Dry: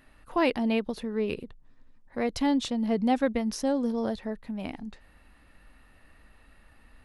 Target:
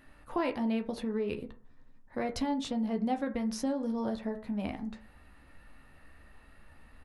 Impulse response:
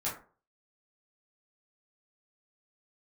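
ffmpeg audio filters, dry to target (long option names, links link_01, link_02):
-filter_complex "[0:a]asplit=2[link_01][link_02];[link_02]adelay=14,volume=-10.5dB[link_03];[link_01][link_03]amix=inputs=2:normalize=0,acompressor=threshold=-29dB:ratio=5,asplit=2[link_04][link_05];[1:a]atrim=start_sample=2205,lowpass=2500[link_06];[link_05][link_06]afir=irnorm=-1:irlink=0,volume=-9dB[link_07];[link_04][link_07]amix=inputs=2:normalize=0,volume=-2dB"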